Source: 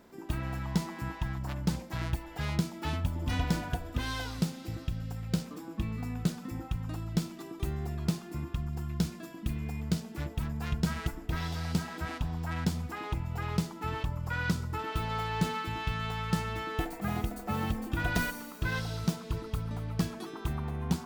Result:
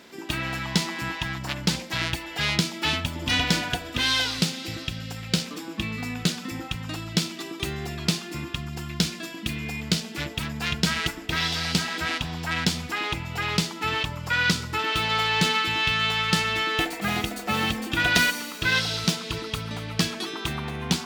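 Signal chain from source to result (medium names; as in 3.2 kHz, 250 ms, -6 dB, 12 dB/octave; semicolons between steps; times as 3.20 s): frequency weighting D; trim +7 dB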